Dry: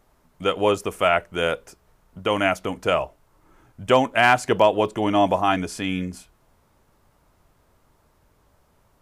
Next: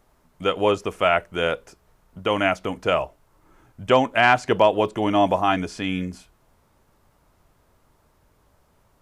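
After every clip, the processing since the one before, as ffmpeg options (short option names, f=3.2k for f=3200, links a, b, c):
-filter_complex "[0:a]acrossover=split=6600[a][b];[b]acompressor=threshold=-55dB:ratio=4:attack=1:release=60[c];[a][c]amix=inputs=2:normalize=0"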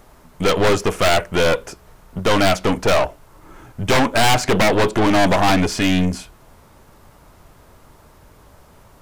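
-af "aeval=exprs='0.668*sin(PI/2*3.98*val(0)/0.668)':c=same,aeval=exprs='(tanh(4.47*val(0)+0.55)-tanh(0.55))/4.47':c=same"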